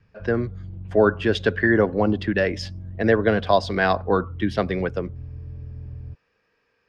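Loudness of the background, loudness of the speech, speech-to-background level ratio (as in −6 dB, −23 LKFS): −37.5 LKFS, −22.0 LKFS, 15.5 dB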